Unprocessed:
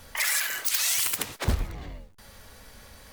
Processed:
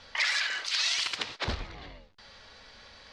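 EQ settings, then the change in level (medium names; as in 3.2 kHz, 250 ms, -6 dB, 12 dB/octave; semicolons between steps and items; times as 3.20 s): resonant low-pass 4.5 kHz, resonance Q 2; distance through air 74 m; bass shelf 330 Hz -10.5 dB; 0.0 dB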